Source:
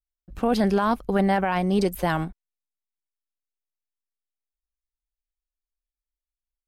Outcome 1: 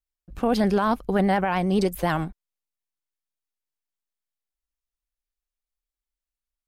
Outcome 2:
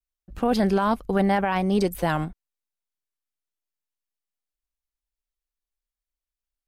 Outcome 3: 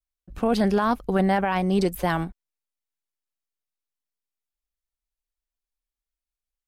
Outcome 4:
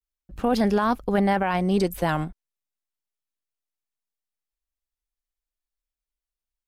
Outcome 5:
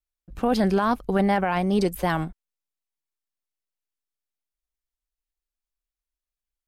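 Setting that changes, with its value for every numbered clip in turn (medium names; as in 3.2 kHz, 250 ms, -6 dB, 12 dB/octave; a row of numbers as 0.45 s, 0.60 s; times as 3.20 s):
vibrato, rate: 9.7 Hz, 0.82 Hz, 1.5 Hz, 0.33 Hz, 2.5 Hz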